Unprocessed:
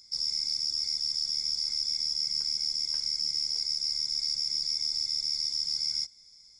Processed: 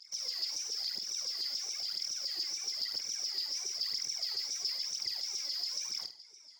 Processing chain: high-pass 60 Hz; overload inside the chain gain 34 dB; wow and flutter 130 cents; RIAA curve playback; phaser 1 Hz, delay 3.6 ms, feedback 67%; LFO high-pass saw down 7.1 Hz 360–5300 Hz; flutter echo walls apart 8.5 m, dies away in 0.3 s; trim +3 dB

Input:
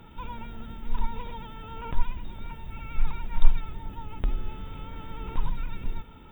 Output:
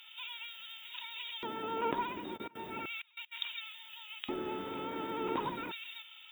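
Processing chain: LFO high-pass square 0.35 Hz 340–3000 Hz; 2.36–3.31 s: trance gate "..x..x.xxxxxx" 194 bpm -24 dB; trim +4 dB

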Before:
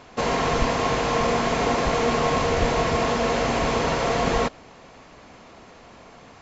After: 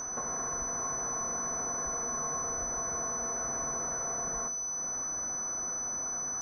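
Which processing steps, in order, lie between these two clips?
resonant high shelf 2.1 kHz -13.5 dB, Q 3; compression 6:1, threshold -39 dBFS, peak gain reduction 21.5 dB; whistle 6 kHz -33 dBFS; on a send at -6 dB: reverberation, pre-delay 3 ms; on the sum: bit-crushed delay 266 ms, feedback 35%, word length 9-bit, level -15 dB; trim -1.5 dB

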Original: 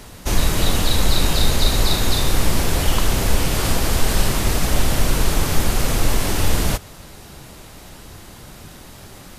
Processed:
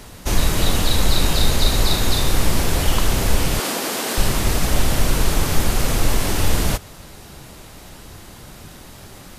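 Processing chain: 3.59–4.18 s: high-pass 230 Hz 24 dB/octave

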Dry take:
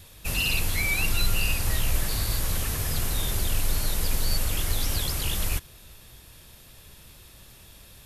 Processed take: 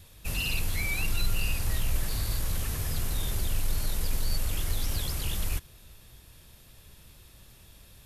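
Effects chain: bass shelf 220 Hz +4 dB; in parallel at -11.5 dB: overload inside the chain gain 21 dB; on the sum: trim -7.5 dB

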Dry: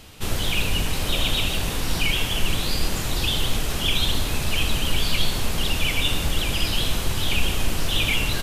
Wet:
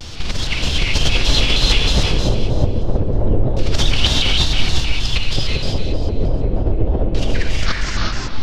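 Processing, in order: tape stop on the ending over 1.42 s; bass shelf 82 Hz +9.5 dB; in parallel at -0.5 dB: peak limiter -16.5 dBFS, peak gain reduction 15.5 dB; on the sum: compressor with a negative ratio -17 dBFS, ratio -1; LFO low-pass square 0.28 Hz 520–5100 Hz; on a send: two-band feedback delay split 2.5 kHz, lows 132 ms, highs 178 ms, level -6 dB; on the sum: gated-style reverb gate 400 ms rising, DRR -2 dB; vibrato with a chosen wave square 3.2 Hz, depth 160 cents; trim -3.5 dB

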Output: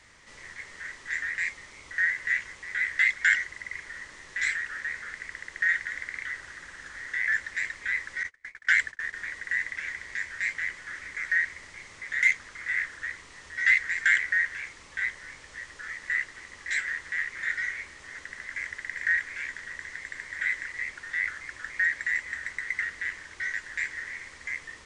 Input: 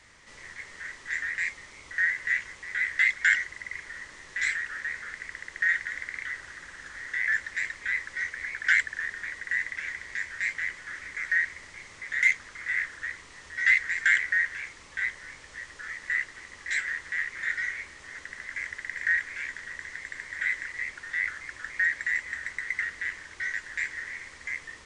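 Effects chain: 8.23–9.13 s: gate -32 dBFS, range -34 dB

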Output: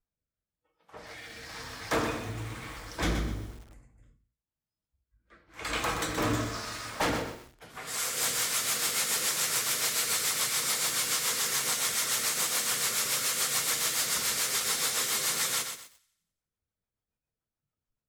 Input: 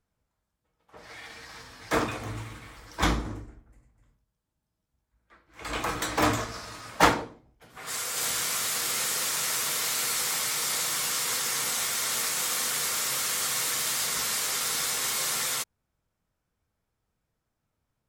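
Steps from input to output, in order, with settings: spectral noise reduction 15 dB; hum notches 60/120/180/240/300/360 Hz; in parallel at -1.5 dB: compression, threshold -39 dBFS, peak gain reduction 22.5 dB; on the sum: hard clipper -20.5 dBFS, distortion -14 dB; rotary cabinet horn 1 Hz, later 7 Hz, at 7.54 s; on a send: thinning echo 87 ms, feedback 51%, high-pass 560 Hz, level -17 dB; on the sum: bit-crushed delay 125 ms, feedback 35%, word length 8-bit, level -7 dB

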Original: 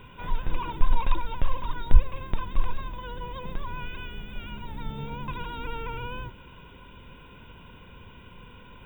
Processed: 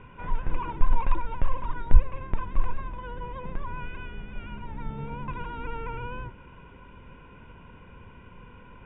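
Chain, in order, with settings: low-pass 2.4 kHz 24 dB/octave

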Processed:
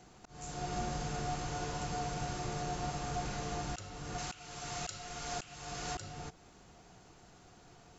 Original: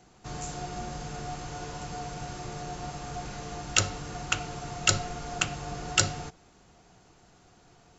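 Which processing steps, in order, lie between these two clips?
4.18–5.95 s: tilt shelf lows -5.5 dB, about 1.1 kHz; slow attack 488 ms

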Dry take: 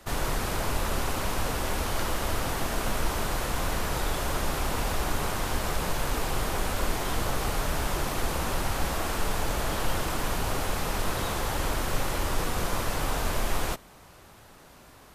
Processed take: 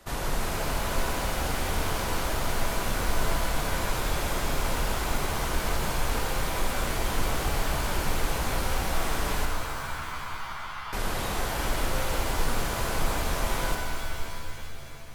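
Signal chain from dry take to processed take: 9.45–10.93 s: Butterworth band-pass 1.2 kHz, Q 1.8; pitch-shifted reverb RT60 2.6 s, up +7 st, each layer -2 dB, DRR 4 dB; trim -2.5 dB

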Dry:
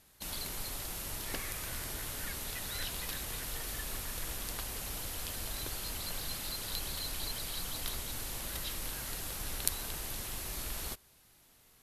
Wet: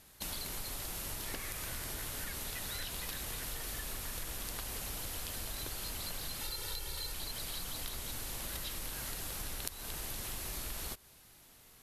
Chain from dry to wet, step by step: 6.41–7.13 s: comb 2.2 ms, depth 74%; compression 6:1, threshold -41 dBFS, peak gain reduction 16 dB; trim +4 dB

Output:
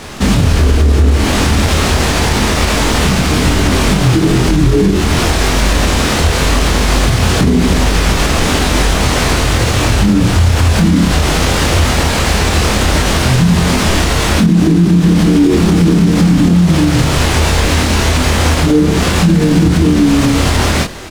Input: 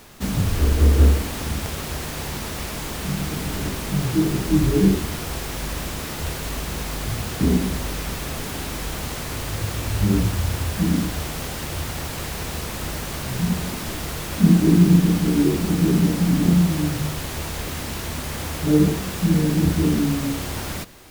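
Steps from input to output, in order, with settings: treble shelf 8.9 kHz +11.5 dB; compression, threshold -20 dBFS, peak gain reduction 11 dB; distance through air 85 m; doubling 24 ms -2 dB; loudness maximiser +18 dB; trim -1 dB

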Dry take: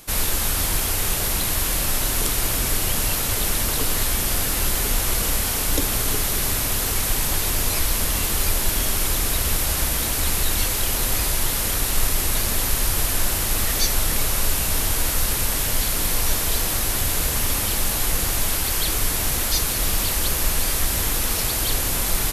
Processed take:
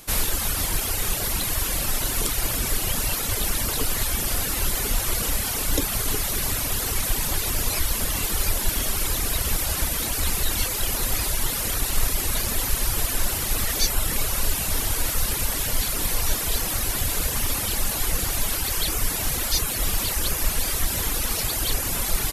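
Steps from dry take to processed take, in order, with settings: reverb removal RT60 1 s

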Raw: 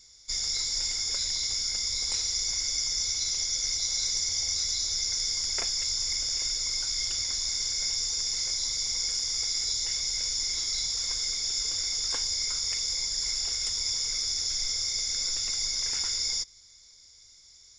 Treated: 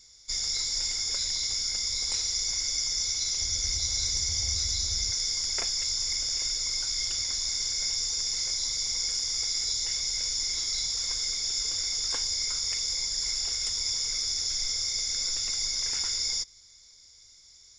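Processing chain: 3.41–5.11 s: peaking EQ 67 Hz +13.5 dB 2.6 oct

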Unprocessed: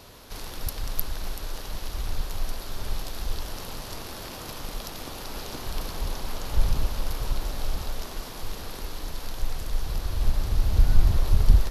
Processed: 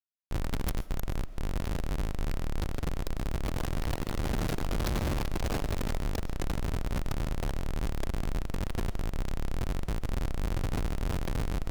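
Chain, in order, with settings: in parallel at -9.5 dB: one-sided clip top -19.5 dBFS; 0.81–1.43 s: on the sum: gate with hold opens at -18 dBFS; 4.73–5.17 s: high-pass 78 Hz 12 dB/octave; 9.62–10.57 s: compression 12:1, threshold -23 dBFS, peak gain reduction 12.5 dB; Schmitt trigger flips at -29.5 dBFS; wow and flutter 15 cents; on a send at -16 dB: reverberation RT60 0.50 s, pre-delay 90 ms; on the sum: trim -6.5 dB

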